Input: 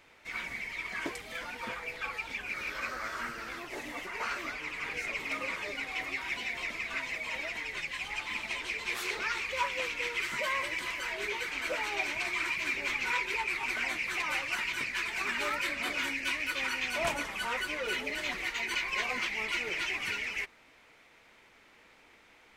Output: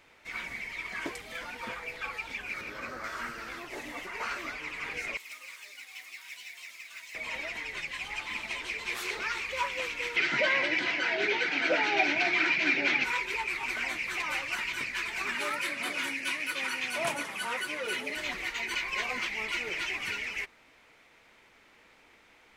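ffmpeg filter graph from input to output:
-filter_complex "[0:a]asettb=1/sr,asplit=3[s0][s1][s2];[s0]atrim=end=2.614[s3];[s1]atrim=start=2.61:end=3.04,asetpts=PTS-STARTPTS,afade=t=in:d=0.004:c=qsin,afade=t=out:st=0.426:d=0.004:c=qsin,highpass=77,tiltshelf=f=700:g=5.5[s4];[s2]atrim=start=3.036[s5];[s3][s4]acrossfade=d=0.004:c1=hsin:c2=qsin[s6];[s6][s5]acrossfade=d=0.004:c1=qsin:c2=hsin,asettb=1/sr,asplit=3[s7][s8][s9];[s7]atrim=end=5.174[s10];[s8]atrim=start=5.17:end=7.15,asetpts=PTS-STARTPTS,afade=t=in:d=0.004:c=qsin,afade=t=out:st=1.976:d=0.004:c=qsin,aderivative,acrusher=bits=4:mode=log:mix=0:aa=0.000001[s11];[s9]atrim=start=7.146[s12];[s10][s11]acrossfade=d=0.004:c1=hsin:c2=qsin[s13];[s13][s12]acrossfade=d=0.004:c1=qsin:c2=hsin,asettb=1/sr,asplit=3[s14][s15][s16];[s14]atrim=end=10.164[s17];[s15]atrim=start=10.16:end=13.04,asetpts=PTS-STARTPTS,afade=t=in:d=0.004:c=qsin,afade=t=out:st=2.876:d=0.004:c=qsin,highpass=f=140:w=0.5412,highpass=f=140:w=1.3066,equalizer=f=140:t=q:w=4:g=6,equalizer=f=300:t=q:w=4:g=9,equalizer=f=730:t=q:w=4:g=7,equalizer=f=1100:t=q:w=4:g=-10,equalizer=f=1500:t=q:w=4:g=5,lowpass=f=5300:w=0.5412,lowpass=f=5300:w=1.3066,acontrast=47[s18];[s16]atrim=start=13.036[s19];[s17][s18]acrossfade=d=0.004:c1=hsin:c2=qsin[s20];[s20][s19]acrossfade=d=0.004:c1=qsin:c2=hsin,asettb=1/sr,asplit=3[s21][s22][s23];[s21]atrim=end=15.354[s24];[s22]atrim=start=15.35:end=18.17,asetpts=PTS-STARTPTS,afade=t=in:d=0.004:c=qsin,afade=t=out:st=2.816:d=0.004:c=qsin,highpass=f=110:w=0.5412,highpass=f=110:w=1.3066,equalizer=f=10000:t=o:w=0.21:g=10[s25];[s23]atrim=start=18.166[s26];[s24][s25]acrossfade=d=0.004:c1=hsin:c2=qsin[s27];[s27][s26]acrossfade=d=0.004:c1=qsin:c2=hsin"

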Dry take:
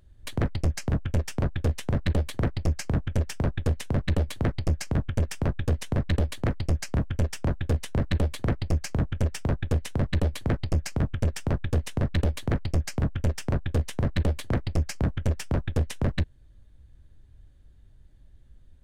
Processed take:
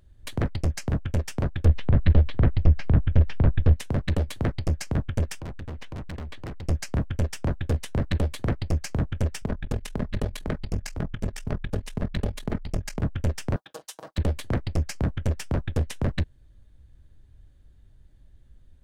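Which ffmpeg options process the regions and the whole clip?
-filter_complex "[0:a]asettb=1/sr,asplit=3[s0][s1][s2];[s0]atrim=end=1.654[s3];[s1]atrim=start=1.65:end=3.76,asetpts=PTS-STARTPTS,afade=t=in:d=0.004:c=qsin,afade=t=out:st=2.106:d=0.004:c=qsin,lowpass=f=3800:w=0.5412,lowpass=f=3800:w=1.3066,lowshelf=f=120:g=11[s4];[s2]atrim=start=3.756[s5];[s3][s4]acrossfade=d=0.004:c1=hsin:c2=qsin[s6];[s6][s5]acrossfade=d=0.004:c1=qsin:c2=hsin,asettb=1/sr,asplit=3[s7][s8][s9];[s7]atrim=end=5.404[s10];[s8]atrim=start=5.4:end=6.68,asetpts=PTS-STARTPTS,afade=t=in:d=0.004:c=qsin,afade=t=out:st=1.276:d=0.004:c=qsin,lowpass=2900,asoftclip=type=hard:threshold=0.0224[s11];[s9]atrim=start=6.676[s12];[s10][s11]acrossfade=d=0.004:c1=hsin:c2=qsin[s13];[s13][s12]acrossfade=d=0.004:c1=qsin:c2=hsin,asettb=1/sr,asplit=3[s14][s15][s16];[s14]atrim=end=9.424[s17];[s15]atrim=start=9.42:end=13.03,asetpts=PTS-STARTPTS,afade=t=in:d=0.004:c=qsin,afade=t=out:st=3.606:d=0.004:c=qsin,aecho=1:1:4.8:0.39,atrim=end_sample=159201,aeval=exprs='val(0)*sin(2*PI*21*n/s)':c=same[s18];[s16]atrim=start=13.026[s19];[s17][s18]acrossfade=d=0.004:c1=hsin:c2=qsin[s20];[s20][s19]acrossfade=d=0.004:c1=qsin:c2=hsin,asettb=1/sr,asplit=3[s21][s22][s23];[s21]atrim=end=13.564[s24];[s22]atrim=start=13.56:end=14.18,asetpts=PTS-STARTPTS,afade=t=in:d=0.004:c=qsin,afade=t=out:st=0.616:d=0.004:c=qsin,highpass=870,equalizer=f=2100:t=o:w=1.1:g=-13.5,aecho=1:1:6.3:0.75,atrim=end_sample=27342[s25];[s23]atrim=start=14.176[s26];[s24][s25]acrossfade=d=0.004:c1=hsin:c2=qsin[s27];[s27][s26]acrossfade=d=0.004:c1=qsin:c2=hsin"

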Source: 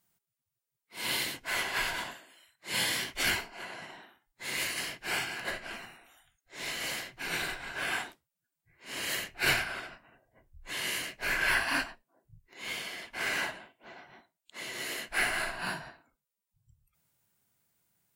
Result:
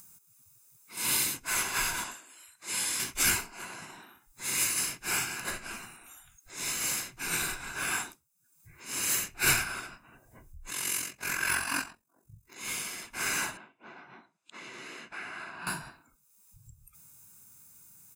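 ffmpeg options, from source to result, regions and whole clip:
-filter_complex "[0:a]asettb=1/sr,asplit=3[s0][s1][s2];[s0]atrim=end=2.044[s3];[s1]atrim=start=2.04:end=3,asetpts=PTS-STARTPTS,afade=t=in:d=0.004:c=qsin,afade=t=out:st=0.956:d=0.004:c=qsin,lowpass=11000,equalizer=f=130:t=o:w=1.4:g=-9,acompressor=threshold=0.0178:ratio=2:attack=3.2:release=140:knee=1:detection=peak[s4];[s2]atrim=start=2.996[s5];[s3][s4]acrossfade=d=0.004:c1=hsin:c2=qsin[s6];[s6][s5]acrossfade=d=0.004:c1=qsin:c2=hsin,asettb=1/sr,asplit=3[s7][s8][s9];[s7]atrim=end=10.704[s10];[s8]atrim=start=10.7:end=12.58,asetpts=PTS-STARTPTS,afade=t=in:d=0.004:c=qsin,afade=t=out:st=1.876:d=0.004:c=qsin,highpass=66,tremolo=f=45:d=0.621[s11];[s9]atrim=start=12.576[s12];[s10][s11]acrossfade=d=0.004:c1=hsin:c2=qsin[s13];[s13][s12]acrossfade=d=0.004:c1=qsin:c2=hsin,asettb=1/sr,asplit=3[s14][s15][s16];[s14]atrim=end=13.574[s17];[s15]atrim=start=13.57:end=15.67,asetpts=PTS-STARTPTS,afade=t=in:d=0.004:c=qsin,afade=t=out:st=2.096:d=0.004:c=qsin,highpass=160,lowpass=3000,acompressor=threshold=0.00891:ratio=2.5:attack=3.2:release=140:knee=1:detection=peak[s18];[s16]atrim=start=15.666[s19];[s17][s18]acrossfade=d=0.004:c1=hsin:c2=qsin[s20];[s20][s19]acrossfade=d=0.004:c1=qsin:c2=hsin,highshelf=f=5100:t=q:w=1.5:g=8.5,aecho=1:1:0.8:0.51,acompressor=mode=upward:threshold=0.00631:ratio=2.5"

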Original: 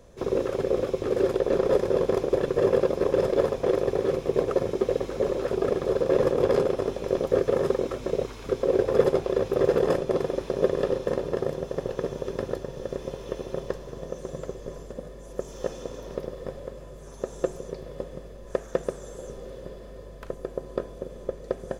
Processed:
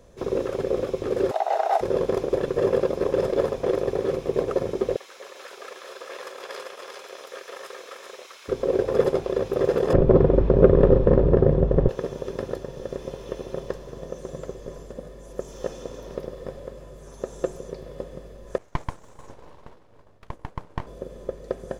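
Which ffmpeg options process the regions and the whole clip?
-filter_complex "[0:a]asettb=1/sr,asplit=3[s0][s1][s2];[s0]atrim=end=1.314[s3];[s1]atrim=start=1.31:end=1.81,asetpts=PTS-STARTPTS,afade=t=in:d=0.004:c=qsin,afade=t=out:st=0.496:d=0.004:c=qsin,highpass=140,afreqshift=260[s4];[s2]atrim=start=1.806[s5];[s3][s4]acrossfade=d=0.004:c1=hsin:c2=qsin[s6];[s6][s5]acrossfade=d=0.004:c1=qsin:c2=hsin,asettb=1/sr,asplit=3[s7][s8][s9];[s7]atrim=end=4.964[s10];[s8]atrim=start=4.96:end=8.48,asetpts=PTS-STARTPTS,afade=t=in:d=0.004:c=qsin,afade=t=out:st=3.516:d=0.004:c=qsin,highpass=1400,aecho=1:1:394:0.631,atrim=end_sample=155232[s11];[s9]atrim=start=8.476[s12];[s10][s11]acrossfade=d=0.004:c1=hsin:c2=qsin[s13];[s13][s12]acrossfade=d=0.004:c1=qsin:c2=hsin,asettb=1/sr,asplit=3[s14][s15][s16];[s14]atrim=end=9.934[s17];[s15]atrim=start=9.93:end=11.89,asetpts=PTS-STARTPTS,afade=t=in:d=0.004:c=qsin,afade=t=out:st=1.956:d=0.004:c=qsin,lowpass=f=1800:p=1,aemphasis=mode=reproduction:type=riaa,acontrast=54[s18];[s16]atrim=start=11.886[s19];[s17][s18]acrossfade=d=0.004:c1=hsin:c2=qsin[s20];[s20][s19]acrossfade=d=0.004:c1=qsin:c2=hsin,asettb=1/sr,asplit=3[s21][s22][s23];[s21]atrim=end=18.584[s24];[s22]atrim=start=18.58:end=20.87,asetpts=PTS-STARTPTS,afade=t=in:d=0.004:c=qsin,afade=t=out:st=2.286:d=0.004:c=qsin,agate=range=0.0224:threshold=0.0178:ratio=3:release=100:detection=peak,aeval=exprs='abs(val(0))':c=same,highshelf=f=7700:g=-6.5[s25];[s23]atrim=start=20.866[s26];[s24][s25]acrossfade=d=0.004:c1=hsin:c2=qsin[s27];[s27][s26]acrossfade=d=0.004:c1=qsin:c2=hsin"

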